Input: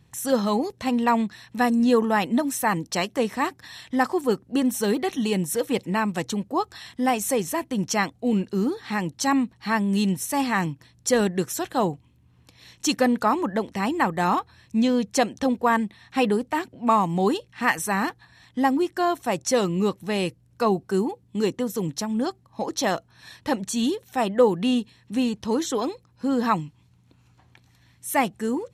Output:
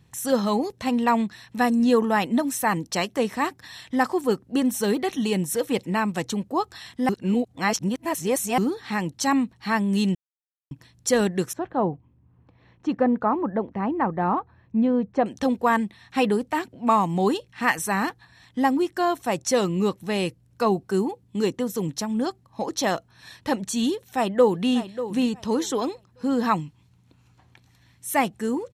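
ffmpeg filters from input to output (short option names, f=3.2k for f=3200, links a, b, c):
-filter_complex "[0:a]asettb=1/sr,asplit=3[a][b][c];[a]atrim=end=11.534[d];[b]atrim=start=11.53:end=15.26,asetpts=PTS-STARTPTS,afade=t=in:d=0.004:c=qsin,afade=t=out:st=3.726:d=0.004:c=qsin,lowpass=1.2k[e];[c]atrim=start=15.256[f];[d][e]acrossfade=d=0.004:c1=hsin:c2=qsin[g];[g][f]acrossfade=d=0.004:c1=qsin:c2=hsin,asplit=2[h][i];[i]afade=t=in:st=23.95:d=0.01,afade=t=out:st=24.67:d=0.01,aecho=0:1:590|1180|1770:0.251189|0.0502377|0.0100475[j];[h][j]amix=inputs=2:normalize=0,asplit=5[k][l][m][n][o];[k]atrim=end=7.092[p];[l]atrim=start=7.088:end=8.582,asetpts=PTS-STARTPTS,areverse[q];[m]atrim=start=8.578:end=10.15,asetpts=PTS-STARTPTS,afade=t=out:st=1.568:d=0.004:c=hsin[r];[n]atrim=start=10.15:end=10.71,asetpts=PTS-STARTPTS,volume=0[s];[o]atrim=start=10.71,asetpts=PTS-STARTPTS,afade=t=in:d=0.004:c=hsin[t];[p][q]acrossfade=d=0.004:c1=hsin:c2=hsin[u];[r][s][t]concat=n=3:v=0:a=1[v];[u][v]acrossfade=d=0.004:c1=hsin:c2=hsin"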